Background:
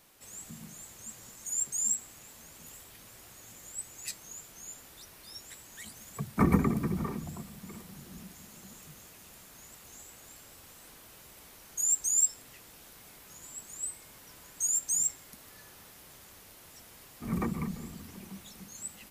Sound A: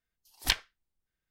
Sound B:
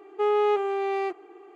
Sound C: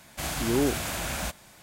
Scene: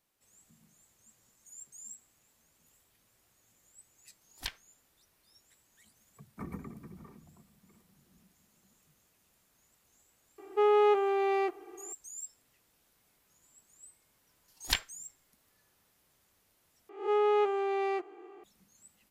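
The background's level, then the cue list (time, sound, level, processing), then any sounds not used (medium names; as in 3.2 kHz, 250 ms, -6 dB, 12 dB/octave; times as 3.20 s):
background -18 dB
3.96 s: add A -12 dB
10.38 s: add B -1.5 dB
14.23 s: add A -3 dB
16.89 s: replace with B -4 dB + reverse spectral sustain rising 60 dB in 0.43 s
not used: C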